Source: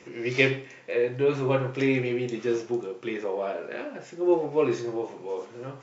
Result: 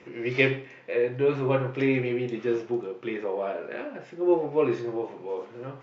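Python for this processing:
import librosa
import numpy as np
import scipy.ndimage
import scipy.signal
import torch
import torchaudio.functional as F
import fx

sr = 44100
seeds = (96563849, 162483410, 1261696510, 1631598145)

y = scipy.signal.sosfilt(scipy.signal.butter(2, 3400.0, 'lowpass', fs=sr, output='sos'), x)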